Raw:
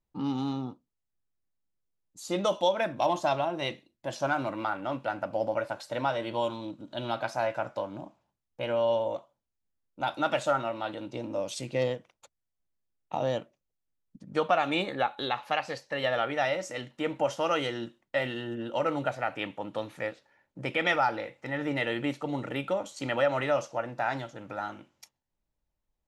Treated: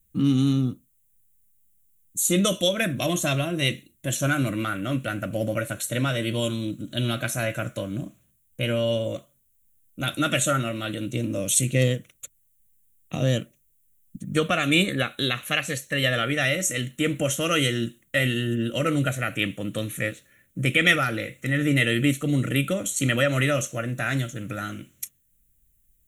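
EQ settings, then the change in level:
bass and treble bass +10 dB, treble +15 dB
high-shelf EQ 5,000 Hz +9.5 dB
phaser with its sweep stopped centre 2,100 Hz, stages 4
+6.5 dB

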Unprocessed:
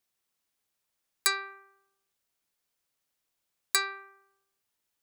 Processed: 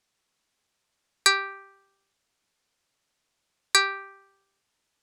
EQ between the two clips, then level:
low-pass filter 7,800 Hz 12 dB per octave
+8.0 dB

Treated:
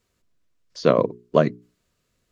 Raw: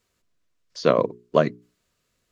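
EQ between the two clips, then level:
low-shelf EQ 450 Hz +5 dB
−1.0 dB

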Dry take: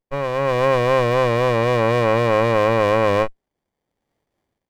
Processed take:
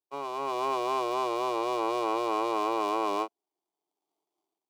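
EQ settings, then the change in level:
high-pass filter 270 Hz 24 dB per octave
phaser with its sweep stopped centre 350 Hz, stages 8
−5.5 dB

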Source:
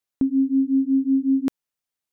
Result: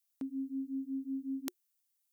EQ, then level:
first difference
tilt shelving filter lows +3 dB
notch filter 360 Hz, Q 12
+7.5 dB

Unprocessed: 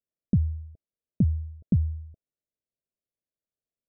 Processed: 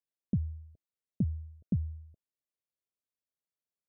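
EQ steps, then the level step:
high-pass filter 75 Hz 6 dB per octave
−6.5 dB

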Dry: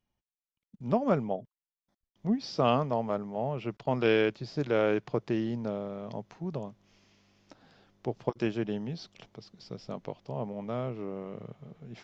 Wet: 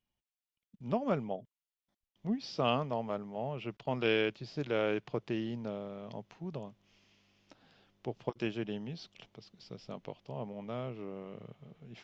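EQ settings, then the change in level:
parametric band 2,900 Hz +6.5 dB 0.82 octaves
−5.5 dB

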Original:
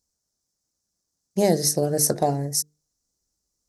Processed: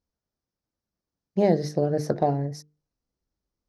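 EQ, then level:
high-frequency loss of the air 310 metres
0.0 dB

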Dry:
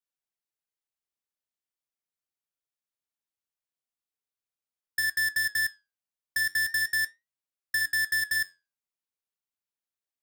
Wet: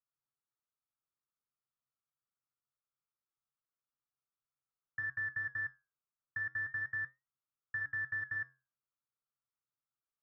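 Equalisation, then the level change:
transistor ladder low-pass 1,400 Hz, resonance 70%
parametric band 130 Hz +14.5 dB 0.27 octaves
low-shelf EQ 320 Hz +6 dB
+2.5 dB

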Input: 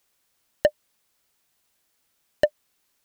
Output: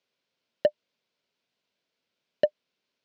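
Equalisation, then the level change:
loudspeaker in its box 190–5,000 Hz, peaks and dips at 320 Hz −6 dB, 810 Hz −10 dB, 1,200 Hz −9 dB, 1,800 Hz −7 dB
high-shelf EQ 2,400 Hz −7 dB
0.0 dB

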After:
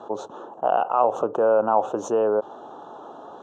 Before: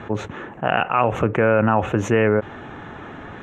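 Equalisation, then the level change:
high-pass filter 630 Hz 12 dB per octave
Butterworth band-reject 2,100 Hz, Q 0.52
Bessel low-pass filter 4,200 Hz, order 2
+5.0 dB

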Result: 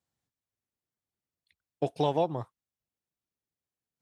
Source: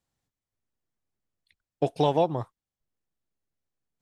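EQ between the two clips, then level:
high-pass filter 61 Hz
−4.0 dB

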